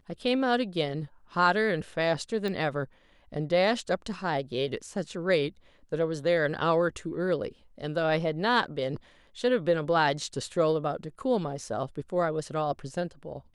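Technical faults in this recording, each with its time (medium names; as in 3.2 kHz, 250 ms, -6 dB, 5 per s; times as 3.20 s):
2.48 s: pop -21 dBFS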